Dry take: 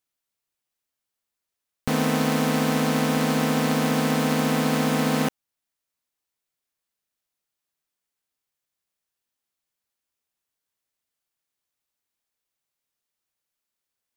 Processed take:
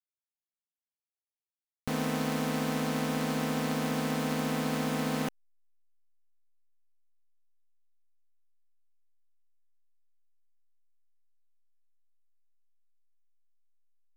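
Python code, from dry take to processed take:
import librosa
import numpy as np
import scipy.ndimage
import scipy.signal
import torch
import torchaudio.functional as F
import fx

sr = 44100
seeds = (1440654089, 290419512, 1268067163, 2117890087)

y = fx.backlash(x, sr, play_db=-49.0)
y = y * librosa.db_to_amplitude(-8.5)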